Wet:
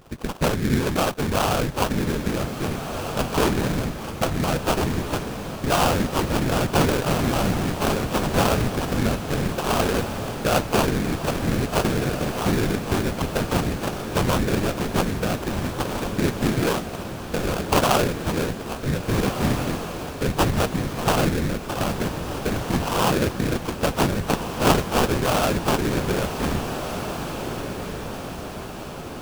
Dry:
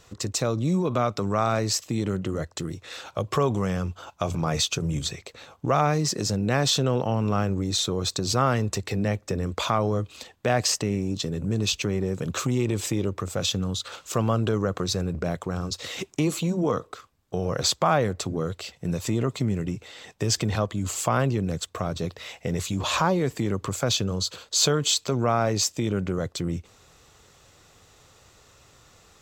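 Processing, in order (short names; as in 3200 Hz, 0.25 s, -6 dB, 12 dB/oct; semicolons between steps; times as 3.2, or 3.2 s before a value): low-pass opened by the level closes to 2700 Hz, open at -24 dBFS; dynamic EQ 4700 Hz, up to +6 dB, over -43 dBFS, Q 2.9; in parallel at +1.5 dB: compressor, threshold -35 dBFS, peak gain reduction 19 dB; on the sum: dispersion highs, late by 0.11 s, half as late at 2800 Hz; whisperiser; sample-rate reducer 2000 Hz, jitter 20%; on a send: diffused feedback echo 1.663 s, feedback 53%, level -8 dB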